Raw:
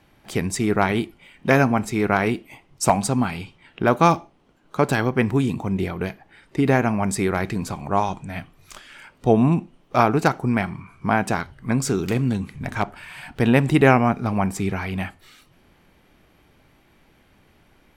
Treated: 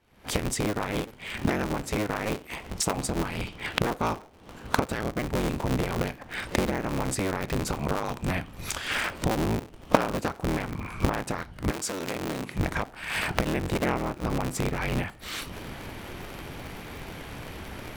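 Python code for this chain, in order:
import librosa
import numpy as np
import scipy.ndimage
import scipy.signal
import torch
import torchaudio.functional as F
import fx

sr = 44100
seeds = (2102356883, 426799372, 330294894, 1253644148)

y = fx.cycle_switch(x, sr, every=3, mode='inverted')
y = fx.recorder_agc(y, sr, target_db=-7.0, rise_db_per_s=66.0, max_gain_db=30)
y = fx.highpass(y, sr, hz=fx.line((11.7, 690.0), (12.57, 240.0)), slope=6, at=(11.7, 12.57), fade=0.02)
y = y * 10.0 ** (-12.5 / 20.0)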